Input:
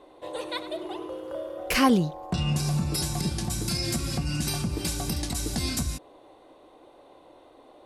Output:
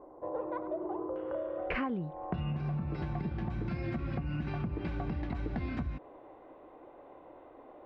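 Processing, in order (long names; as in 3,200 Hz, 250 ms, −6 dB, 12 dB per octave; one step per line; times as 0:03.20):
low-pass filter 1,200 Hz 24 dB per octave, from 0:01.16 2,200 Hz
downward compressor 10 to 1, threshold −31 dBFS, peak gain reduction 16 dB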